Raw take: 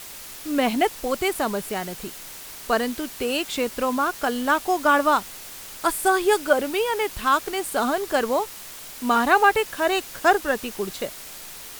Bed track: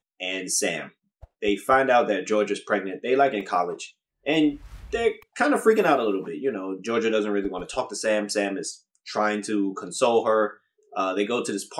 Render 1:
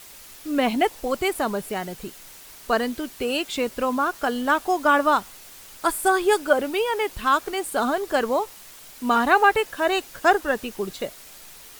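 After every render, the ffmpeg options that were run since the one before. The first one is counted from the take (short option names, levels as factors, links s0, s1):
-af "afftdn=nr=6:nf=-39"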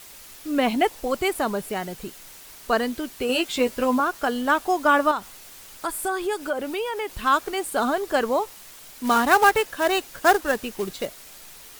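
-filter_complex "[0:a]asettb=1/sr,asplit=3[s0][s1][s2];[s0]atrim=end=3.284[s3];[s1]atrim=start=3.28:end=4,asetpts=PTS-STARTPTS,afade=t=in:d=0.004:c=qsin,afade=t=out:st=0.716:d=0.004:c=qsin,asplit=2[s4][s5];[s5]adelay=12,volume=0.708[s6];[s4][s6]amix=inputs=2:normalize=0,atrim=end_sample=31752[s7];[s2]atrim=start=3.996[s8];[s3][s7]acrossfade=d=0.004:c1=hsin:c2=qsin[s9];[s9][s8]acrossfade=d=0.004:c1=qsin:c2=hsin,asettb=1/sr,asplit=3[s10][s11][s12];[s10]atrim=end=5.114[s13];[s11]atrim=start=5.11:end=7.1,asetpts=PTS-STARTPTS,afade=t=in:d=0.004:c=qsin,afade=t=out:st=1.986:d=0.004:c=qsin,acompressor=threshold=0.0447:ratio=2:attack=3.2:release=140:knee=1:detection=peak[s14];[s12]atrim=start=7.096[s15];[s13][s14]acrossfade=d=0.004:c1=hsin:c2=qsin[s16];[s16][s15]acrossfade=d=0.004:c1=qsin:c2=hsin,asettb=1/sr,asplit=3[s17][s18][s19];[s17]atrim=end=9.044[s20];[s18]atrim=start=9.04:end=11.07,asetpts=PTS-STARTPTS,afade=t=in:d=0.004:c=qsin,afade=t=out:st=2.026:d=0.004:c=qsin,acrusher=bits=3:mode=log:mix=0:aa=0.000001[s21];[s19]atrim=start=11.066[s22];[s20][s21]acrossfade=d=0.004:c1=hsin:c2=qsin[s23];[s23][s22]acrossfade=d=0.004:c1=qsin:c2=hsin"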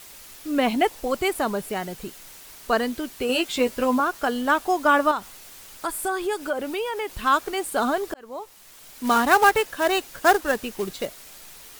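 -filter_complex "[0:a]asplit=2[s0][s1];[s0]atrim=end=8.14,asetpts=PTS-STARTPTS,afade=t=out:st=8.136:d=0.004:c=hsin[s2];[s1]atrim=start=8.14,asetpts=PTS-STARTPTS,afade=t=in:d=0.89[s3];[s2][s3]concat=n=2:v=0:a=1"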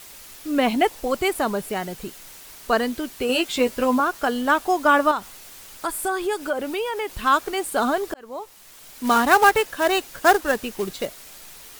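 -af "volume=1.19"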